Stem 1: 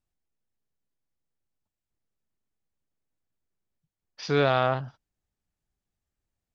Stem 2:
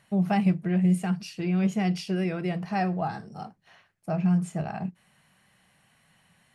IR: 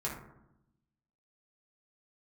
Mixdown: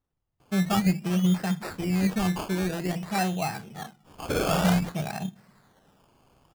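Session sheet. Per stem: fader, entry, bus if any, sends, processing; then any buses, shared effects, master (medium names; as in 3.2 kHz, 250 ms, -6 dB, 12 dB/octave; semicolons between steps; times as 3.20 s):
+1.5 dB, 0.00 s, no send, whisper effect; compression 3:1, threshold -26 dBFS, peak gain reduction 6.5 dB
-1.0 dB, 0.40 s, send -22.5 dB, low-pass 7.1 kHz 12 dB/octave; treble shelf 2.6 kHz +10 dB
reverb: on, RT60 0.85 s, pre-delay 3 ms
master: decimation with a swept rate 18×, swing 60% 0.52 Hz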